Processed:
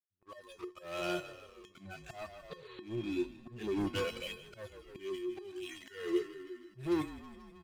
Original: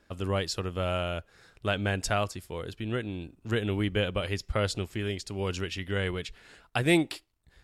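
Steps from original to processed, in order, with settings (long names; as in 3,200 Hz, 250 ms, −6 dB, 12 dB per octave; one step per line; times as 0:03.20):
harmonic-percussive split with one part muted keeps harmonic
noise reduction from a noise print of the clip's start 27 dB
leveller curve on the samples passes 5
sound drawn into the spectrogram noise, 0:02.51–0:02.83, 850–4,600 Hz −40 dBFS
echo with shifted repeats 156 ms, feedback 63%, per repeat −40 Hz, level −16 dB
volume swells 311 ms
pitch vibrato 0.94 Hz 84 cents
tuned comb filter 360 Hz, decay 0.24 s, harmonics odd, mix 90%
level +3.5 dB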